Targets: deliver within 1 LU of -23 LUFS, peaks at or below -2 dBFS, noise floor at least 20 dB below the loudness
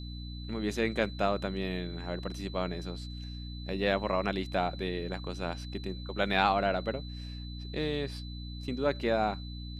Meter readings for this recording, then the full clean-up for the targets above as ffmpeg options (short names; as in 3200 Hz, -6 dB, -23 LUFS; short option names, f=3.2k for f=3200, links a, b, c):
hum 60 Hz; harmonics up to 300 Hz; hum level -38 dBFS; steady tone 4000 Hz; tone level -48 dBFS; loudness -33.0 LUFS; peak -9.5 dBFS; loudness target -23.0 LUFS
-> -af "bandreject=f=60:t=h:w=6,bandreject=f=120:t=h:w=6,bandreject=f=180:t=h:w=6,bandreject=f=240:t=h:w=6,bandreject=f=300:t=h:w=6"
-af "bandreject=f=4k:w=30"
-af "volume=10dB,alimiter=limit=-2dB:level=0:latency=1"